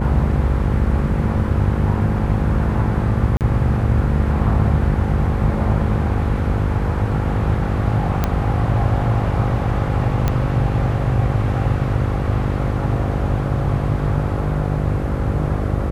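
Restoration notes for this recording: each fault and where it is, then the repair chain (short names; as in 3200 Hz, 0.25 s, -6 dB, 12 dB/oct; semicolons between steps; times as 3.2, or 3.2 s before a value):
buzz 50 Hz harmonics 11 -23 dBFS
3.37–3.41 gap 38 ms
8.24 pop -5 dBFS
10.28 pop -6 dBFS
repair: de-click; de-hum 50 Hz, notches 11; interpolate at 3.37, 38 ms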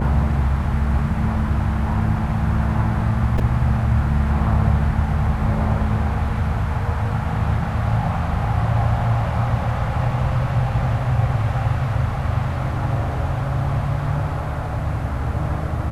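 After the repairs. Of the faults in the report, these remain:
none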